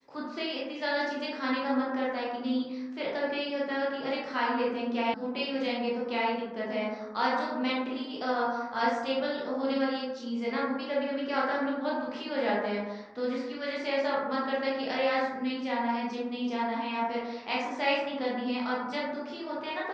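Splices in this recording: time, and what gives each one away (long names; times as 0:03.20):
0:05.14: cut off before it has died away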